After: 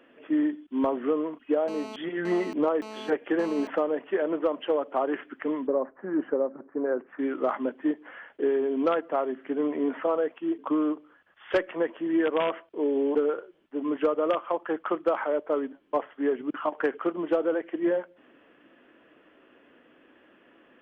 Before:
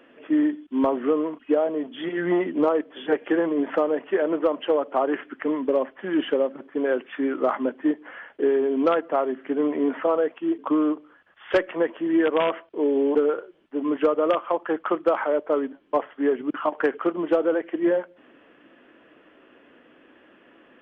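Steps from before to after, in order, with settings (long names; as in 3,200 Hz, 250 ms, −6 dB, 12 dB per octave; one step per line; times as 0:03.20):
0:01.68–0:03.67: phone interference −36 dBFS
0:05.67–0:07.19: low-pass filter 1,500 Hz 24 dB per octave
level −4 dB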